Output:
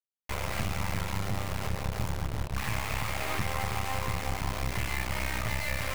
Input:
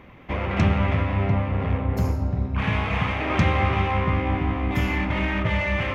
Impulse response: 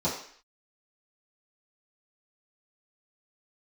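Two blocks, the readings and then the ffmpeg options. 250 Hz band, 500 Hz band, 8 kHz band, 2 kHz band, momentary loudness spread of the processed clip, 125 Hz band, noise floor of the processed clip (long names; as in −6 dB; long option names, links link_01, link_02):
−14.0 dB, −10.0 dB, can't be measured, −7.0 dB, 2 LU, −11.0 dB, −44 dBFS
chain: -filter_complex "[0:a]equalizer=frequency=270:width=1.3:gain=-13,acompressor=threshold=-25dB:ratio=4,bass=frequency=250:gain=-1,treble=frequency=4000:gain=-5,acrusher=bits=3:dc=4:mix=0:aa=0.000001,asplit=2[link_01][link_02];[1:a]atrim=start_sample=2205,asetrate=30429,aresample=44100[link_03];[link_02][link_03]afir=irnorm=-1:irlink=0,volume=-26.5dB[link_04];[link_01][link_04]amix=inputs=2:normalize=0"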